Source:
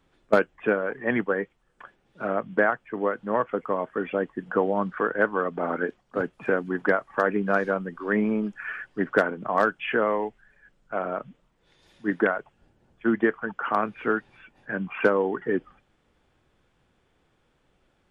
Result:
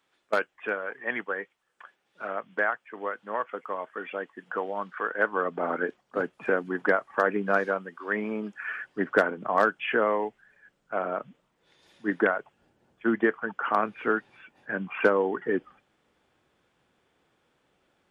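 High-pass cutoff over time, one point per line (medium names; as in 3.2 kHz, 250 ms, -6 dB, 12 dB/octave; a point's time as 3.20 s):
high-pass 6 dB/octave
5.03 s 1.2 kHz
5.48 s 290 Hz
7.59 s 290 Hz
7.95 s 970 Hz
8.84 s 230 Hz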